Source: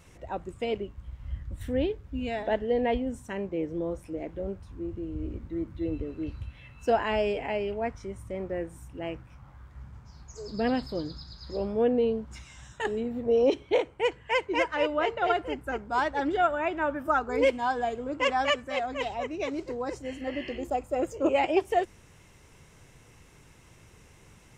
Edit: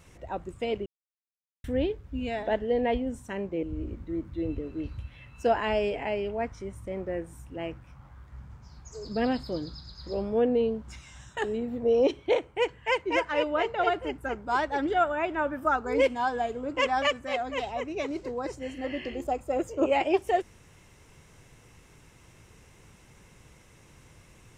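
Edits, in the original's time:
0:00.86–0:01.64: silence
0:03.63–0:05.06: remove

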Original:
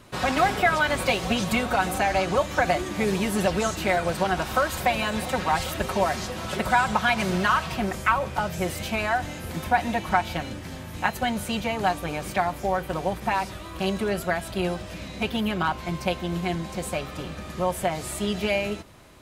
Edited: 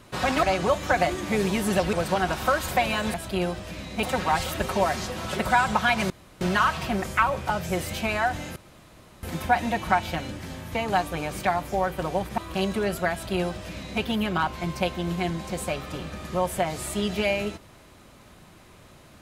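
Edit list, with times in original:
0:00.43–0:02.11: remove
0:03.61–0:04.02: remove
0:07.30: splice in room tone 0.31 s
0:09.45: splice in room tone 0.67 s
0:10.97–0:11.66: remove
0:13.29–0:13.63: remove
0:14.37–0:15.26: duplicate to 0:05.23

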